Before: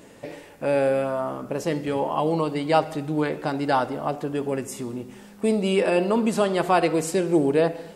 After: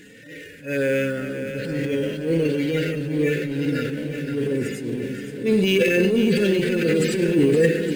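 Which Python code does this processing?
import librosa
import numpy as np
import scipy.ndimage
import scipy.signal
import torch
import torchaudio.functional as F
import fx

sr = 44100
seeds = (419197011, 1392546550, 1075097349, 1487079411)

p1 = fx.hpss_only(x, sr, part='harmonic')
p2 = scipy.signal.sosfilt(scipy.signal.ellip(3, 1.0, 40, [490.0, 1600.0], 'bandstop', fs=sr, output='sos'), p1)
p3 = fx.peak_eq(p2, sr, hz=2100.0, db=9.0, octaves=2.4)
p4 = fx.transient(p3, sr, attack_db=-10, sustain_db=7)
p5 = fx.sample_hold(p4, sr, seeds[0], rate_hz=9000.0, jitter_pct=0)
p6 = p4 + (p5 * librosa.db_to_amplitude(-10.0))
p7 = fx.echo_swing(p6, sr, ms=865, ratio=1.5, feedback_pct=53, wet_db=-9.5)
y = p7 * librosa.db_to_amplitude(1.5)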